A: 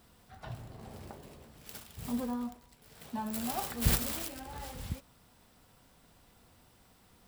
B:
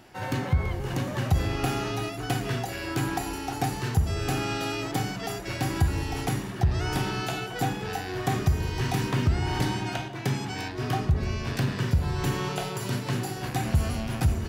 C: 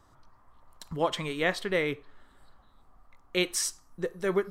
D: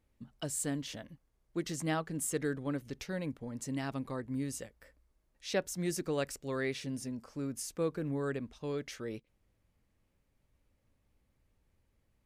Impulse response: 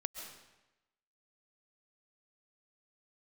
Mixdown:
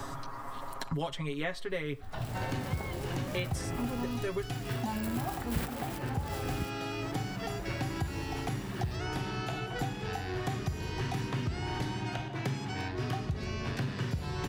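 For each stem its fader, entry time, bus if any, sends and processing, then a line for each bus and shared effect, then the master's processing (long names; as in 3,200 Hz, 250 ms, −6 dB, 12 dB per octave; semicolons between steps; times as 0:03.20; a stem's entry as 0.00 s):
−4.0 dB, 1.70 s, no send, automatic gain control gain up to 6 dB
−9.0 dB, 2.20 s, no send, high-shelf EQ 8,900 Hz −10.5 dB
−7.0 dB, 0.00 s, no send, comb filter 7.3 ms, depth 86%
muted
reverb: not used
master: multiband upward and downward compressor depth 100%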